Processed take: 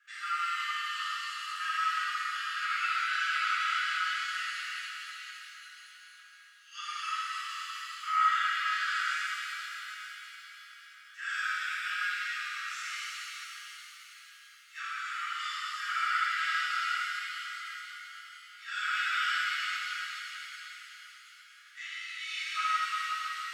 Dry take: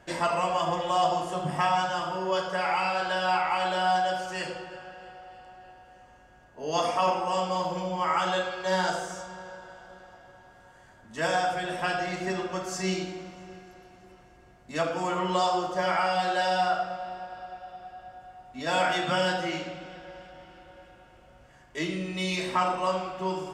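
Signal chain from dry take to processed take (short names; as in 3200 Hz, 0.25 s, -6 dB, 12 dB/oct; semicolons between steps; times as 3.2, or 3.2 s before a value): requantised 12-bit, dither triangular; Chebyshev high-pass 1200 Hz, order 10; tilt -4 dB/oct; stuck buffer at 5.77, samples 256, times 8; shimmer reverb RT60 3.8 s, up +7 st, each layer -8 dB, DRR -10.5 dB; gain -6 dB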